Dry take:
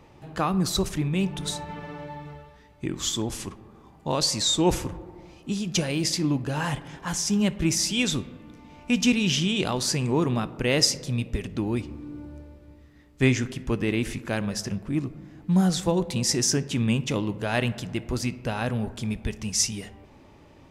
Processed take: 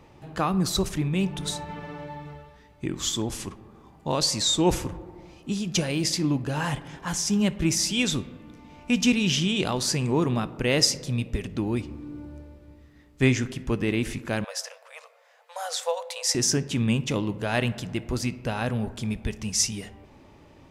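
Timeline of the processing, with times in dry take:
14.44–16.35 s: brick-wall FIR high-pass 460 Hz

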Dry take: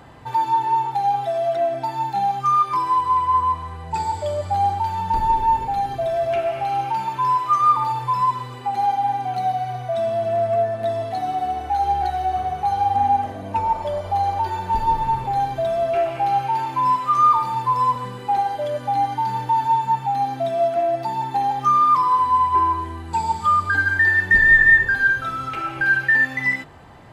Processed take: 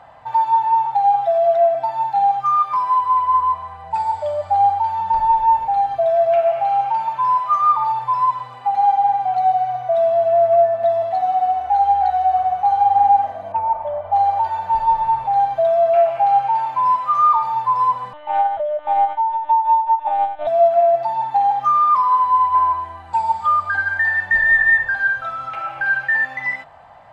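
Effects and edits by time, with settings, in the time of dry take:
13.52–14.13 s: distance through air 470 m
18.13–20.47 s: monotone LPC vocoder at 8 kHz 300 Hz
whole clip: low-pass 2.1 kHz 6 dB/octave; resonant low shelf 500 Hz -10 dB, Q 3

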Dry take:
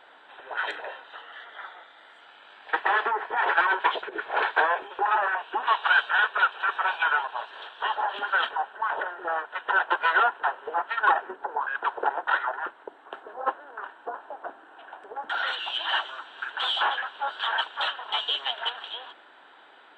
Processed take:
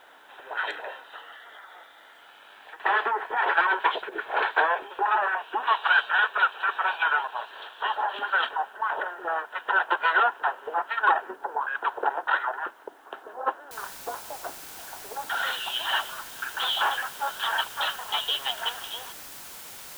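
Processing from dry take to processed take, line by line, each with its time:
1.33–2.80 s: compression, threshold -42 dBFS
13.71 s: noise floor step -69 dB -43 dB

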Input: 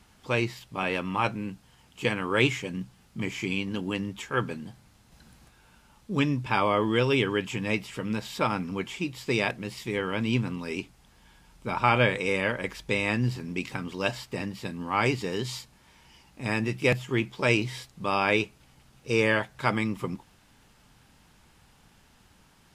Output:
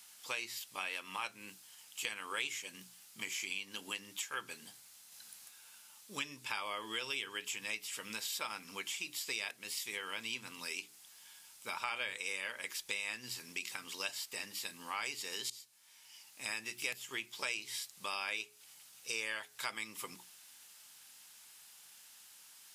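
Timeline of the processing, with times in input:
15.50–16.50 s: fade in linear, from -20 dB
whole clip: differentiator; hum notches 60/120/180/240/300/360/420 Hz; compression 3:1, threshold -48 dBFS; trim +9.5 dB

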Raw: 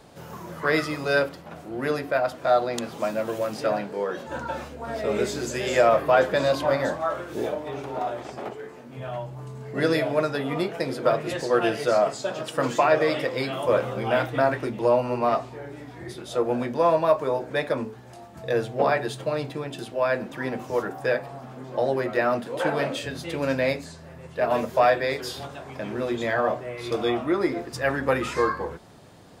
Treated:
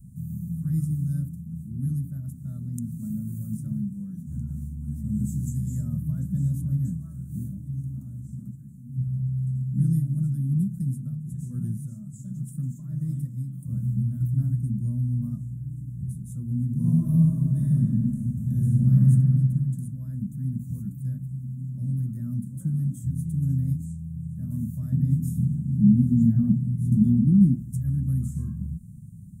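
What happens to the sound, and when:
10.84–14.21 s: tremolo 1.3 Hz, depth 58%
16.66–19.08 s: reverb throw, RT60 2.5 s, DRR -7.5 dB
24.92–27.56 s: small resonant body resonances 210/730 Hz, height 15 dB, ringing for 25 ms
whole clip: inverse Chebyshev band-stop 400–4800 Hz, stop band 40 dB; resonant low shelf 250 Hz +10 dB, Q 1.5

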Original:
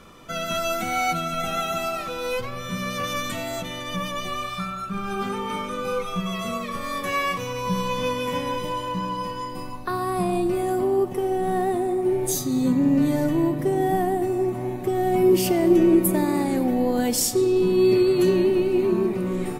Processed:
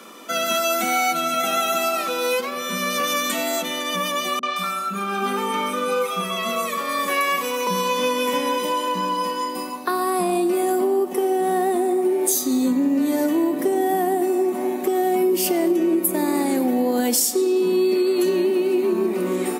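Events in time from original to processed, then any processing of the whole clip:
4.39–7.67 s: three bands offset in time lows, mids, highs 40/170 ms, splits 290/5700 Hz
whole clip: steep high-pass 210 Hz 48 dB/octave; treble shelf 7 kHz +8.5 dB; compression, threshold -23 dBFS; trim +6 dB

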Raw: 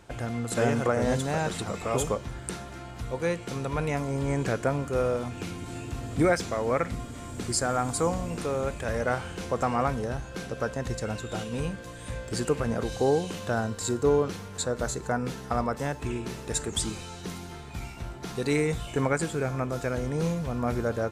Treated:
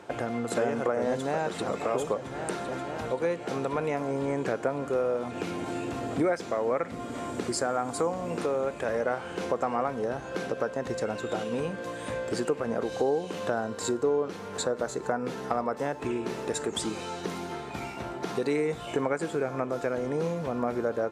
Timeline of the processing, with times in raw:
1.09–1.70 s: echo throw 530 ms, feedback 85%, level -14 dB
whole clip: high-pass 390 Hz 12 dB/octave; tilt EQ -3 dB/octave; compression 2.5:1, threshold -37 dBFS; trim +8 dB

